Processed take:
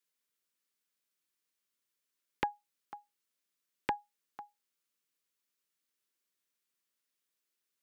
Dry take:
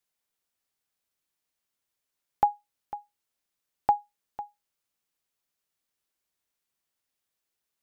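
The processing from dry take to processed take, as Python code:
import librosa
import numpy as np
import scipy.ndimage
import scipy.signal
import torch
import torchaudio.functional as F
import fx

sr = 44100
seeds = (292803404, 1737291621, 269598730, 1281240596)

y = scipy.signal.sosfilt(scipy.signal.butter(2, 180.0, 'highpass', fs=sr, output='sos'), x)
y = fx.peak_eq(y, sr, hz=760.0, db=-11.0, octaves=0.56)
y = fx.doppler_dist(y, sr, depth_ms=0.87)
y = y * 10.0 ** (-1.5 / 20.0)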